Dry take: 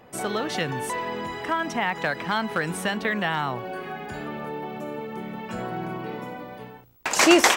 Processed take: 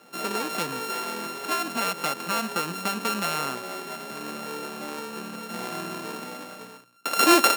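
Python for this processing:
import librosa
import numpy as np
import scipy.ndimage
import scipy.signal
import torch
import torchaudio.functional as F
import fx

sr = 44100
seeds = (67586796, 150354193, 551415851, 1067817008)

y = np.r_[np.sort(x[:len(x) // 32 * 32].reshape(-1, 32), axis=1).ravel(), x[len(x) // 32 * 32:]]
y = scipy.signal.sosfilt(scipy.signal.butter(4, 180.0, 'highpass', fs=sr, output='sos'), y)
y = y * librosa.db_to_amplitude(-1.5)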